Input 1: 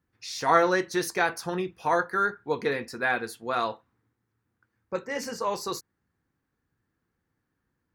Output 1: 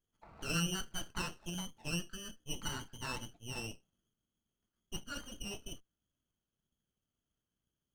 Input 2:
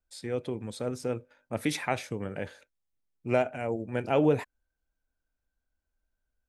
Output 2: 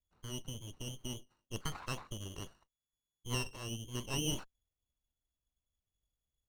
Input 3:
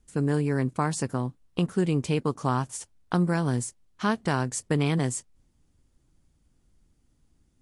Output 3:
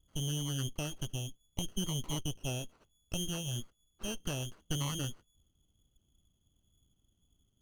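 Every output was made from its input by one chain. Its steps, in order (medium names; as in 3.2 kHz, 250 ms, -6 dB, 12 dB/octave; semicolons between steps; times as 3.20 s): Chebyshev band-stop 780–2000 Hz, order 3; frequency inversion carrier 3.4 kHz; sliding maximum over 9 samples; trim -6.5 dB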